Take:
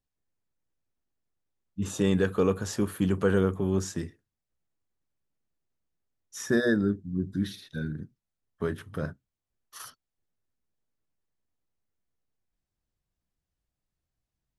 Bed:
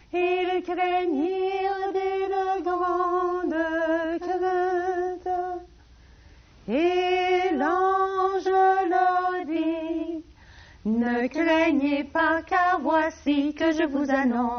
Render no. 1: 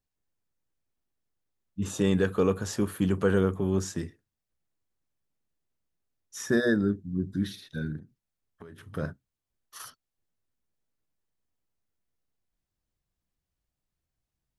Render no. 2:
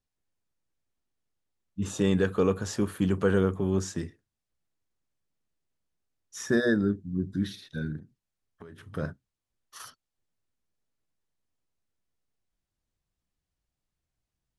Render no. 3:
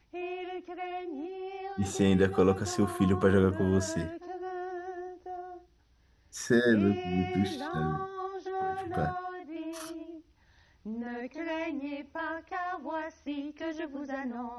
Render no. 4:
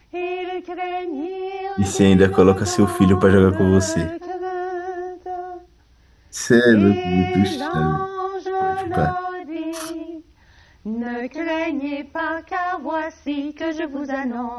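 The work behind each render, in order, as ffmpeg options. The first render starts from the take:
-filter_complex "[0:a]asettb=1/sr,asplit=3[s0][s1][s2];[s0]atrim=end=7.984[s3];[s1]atrim=start=7.98:end=8.83,asetpts=PTS-STARTPTS,afade=t=in:d=0.004:c=qsin,afade=t=out:st=0.846:d=0.004:c=qsin,acompressor=threshold=0.00631:ratio=6:attack=3.2:release=140:knee=1:detection=peak[s4];[s2]atrim=start=8.826[s5];[s3][s4]acrossfade=d=0.004:c1=hsin:c2=qsin[s6];[s6][s5]acrossfade=d=0.004:c1=qsin:c2=hsin"
-af "lowpass=10000"
-filter_complex "[1:a]volume=0.211[s0];[0:a][s0]amix=inputs=2:normalize=0"
-af "volume=3.76,alimiter=limit=0.794:level=0:latency=1"

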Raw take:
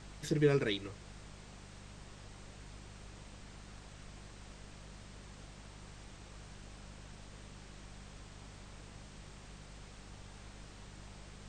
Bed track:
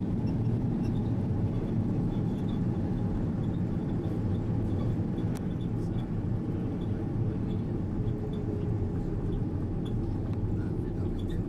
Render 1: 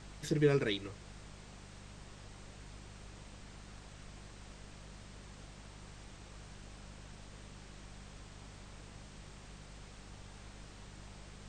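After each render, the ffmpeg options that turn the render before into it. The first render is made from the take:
-af anull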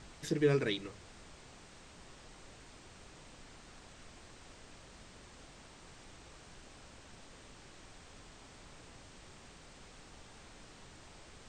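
-af "bandreject=f=50:t=h:w=4,bandreject=f=100:t=h:w=4,bandreject=f=150:t=h:w=4,bandreject=f=200:t=h:w=4"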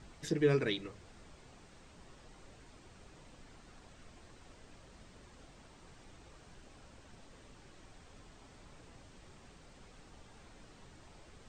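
-af "afftdn=nr=6:nf=-56"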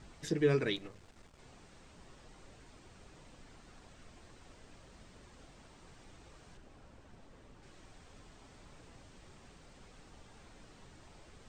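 -filter_complex "[0:a]asettb=1/sr,asplit=3[s0][s1][s2];[s0]atrim=end=0.764[s3];[s1]atrim=start=0.76:end=1.39,asetpts=PTS-STARTPTS,afade=t=in:d=0.004:c=qsin,afade=t=out:st=0.626:d=0.004:c=qsin,aeval=exprs='if(lt(val(0),0),0.251*val(0),val(0))':c=same[s4];[s2]atrim=start=1.386[s5];[s3][s4]acrossfade=d=0.004:c1=hsin:c2=qsin[s6];[s6][s5]acrossfade=d=0.004:c1=qsin:c2=hsin,asettb=1/sr,asplit=3[s7][s8][s9];[s7]atrim=end=6.574[s10];[s8]atrim=start=6.57:end=7.63,asetpts=PTS-STARTPTS,afade=t=in:d=0.004:c=qsin,afade=t=out:st=1.056:d=0.004:c=qsin,highshelf=f=2300:g=-8[s11];[s9]atrim=start=7.626[s12];[s10][s11]acrossfade=d=0.004:c1=hsin:c2=qsin[s13];[s13][s12]acrossfade=d=0.004:c1=qsin:c2=hsin"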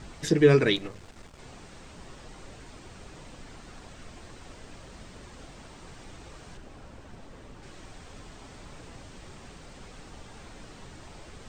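-af "volume=3.35"

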